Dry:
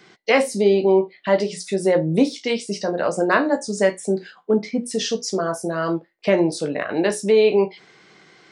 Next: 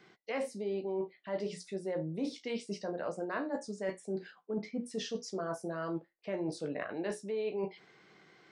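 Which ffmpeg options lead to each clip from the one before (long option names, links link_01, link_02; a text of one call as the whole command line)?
ffmpeg -i in.wav -af "highshelf=frequency=4400:gain=-9,areverse,acompressor=threshold=-24dB:ratio=6,areverse,volume=-9dB" out.wav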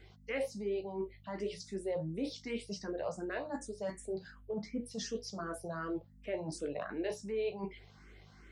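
ffmpeg -i in.wav -filter_complex "[0:a]highshelf=frequency=4900:gain=5.5,aeval=exprs='val(0)+0.00178*(sin(2*PI*50*n/s)+sin(2*PI*2*50*n/s)/2+sin(2*PI*3*50*n/s)/3+sin(2*PI*4*50*n/s)/4+sin(2*PI*5*50*n/s)/5)':channel_layout=same,asplit=2[link_01][link_02];[link_02]afreqshift=2.7[link_03];[link_01][link_03]amix=inputs=2:normalize=1,volume=1dB" out.wav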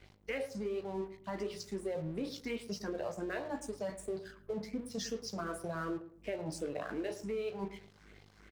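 ffmpeg -i in.wav -filter_complex "[0:a]acompressor=threshold=-38dB:ratio=6,aeval=exprs='sgn(val(0))*max(abs(val(0))-0.00119,0)':channel_layout=same,asplit=2[link_01][link_02];[link_02]adelay=109,lowpass=frequency=1200:poles=1,volume=-12dB,asplit=2[link_03][link_04];[link_04]adelay=109,lowpass=frequency=1200:poles=1,volume=0.3,asplit=2[link_05][link_06];[link_06]adelay=109,lowpass=frequency=1200:poles=1,volume=0.3[link_07];[link_01][link_03][link_05][link_07]amix=inputs=4:normalize=0,volume=4.5dB" out.wav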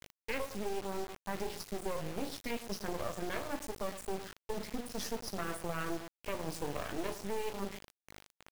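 ffmpeg -i in.wav -af "acrusher=bits=5:dc=4:mix=0:aa=0.000001,volume=4dB" out.wav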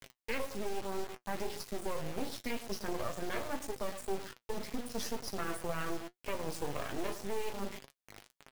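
ffmpeg -i in.wav -af "flanger=delay=7.1:depth=1.8:regen=56:speed=1.9:shape=triangular,volume=4.5dB" out.wav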